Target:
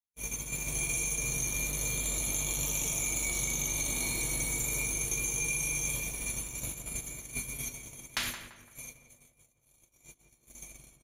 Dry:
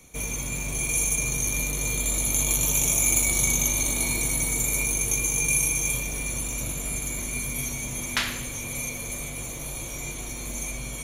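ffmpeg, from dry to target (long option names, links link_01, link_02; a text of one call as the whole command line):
ffmpeg -i in.wav -filter_complex "[0:a]acrossover=split=5900[link_01][link_02];[link_02]acompressor=threshold=-35dB:ratio=4:attack=1:release=60[link_03];[link_01][link_03]amix=inputs=2:normalize=0,agate=range=-55dB:threshold=-29dB:ratio=16:detection=peak,aemphasis=mode=production:type=cd,acompressor=threshold=-29dB:ratio=6,asoftclip=type=tanh:threshold=-18dB,asplit=2[link_04][link_05];[link_05]adelay=170,lowpass=frequency=2000:poles=1,volume=-8dB,asplit=2[link_06][link_07];[link_07]adelay=170,lowpass=frequency=2000:poles=1,volume=0.44,asplit=2[link_08][link_09];[link_09]adelay=170,lowpass=frequency=2000:poles=1,volume=0.44,asplit=2[link_10][link_11];[link_11]adelay=170,lowpass=frequency=2000:poles=1,volume=0.44,asplit=2[link_12][link_13];[link_13]adelay=170,lowpass=frequency=2000:poles=1,volume=0.44[link_14];[link_06][link_08][link_10][link_12][link_14]amix=inputs=5:normalize=0[link_15];[link_04][link_15]amix=inputs=2:normalize=0" out.wav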